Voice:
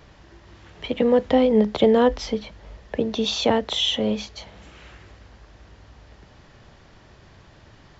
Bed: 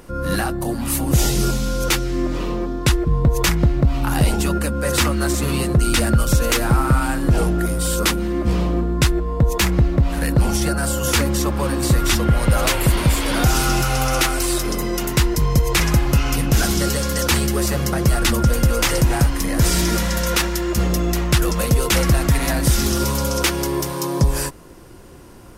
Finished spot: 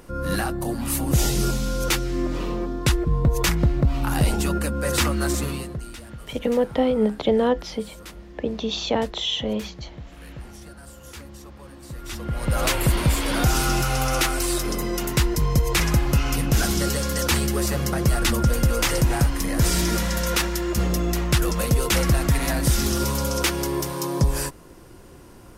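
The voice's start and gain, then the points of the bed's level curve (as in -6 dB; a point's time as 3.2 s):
5.45 s, -3.0 dB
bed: 5.38 s -3.5 dB
5.99 s -23 dB
11.84 s -23 dB
12.64 s -3.5 dB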